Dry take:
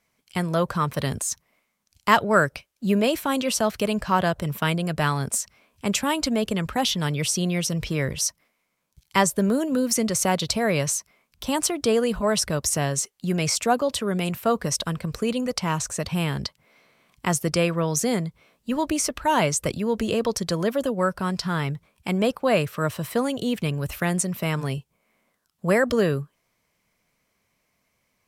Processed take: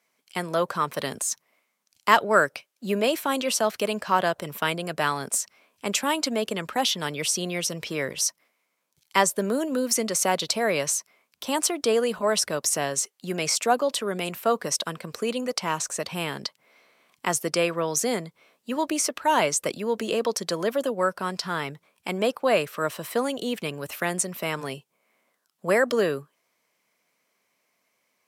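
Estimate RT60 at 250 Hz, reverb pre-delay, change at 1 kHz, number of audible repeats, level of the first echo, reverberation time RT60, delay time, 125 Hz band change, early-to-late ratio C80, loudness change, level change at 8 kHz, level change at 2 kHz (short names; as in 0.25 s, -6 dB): none, none, 0.0 dB, none, none, none, none, -11.0 dB, none, -1.5 dB, 0.0 dB, 0.0 dB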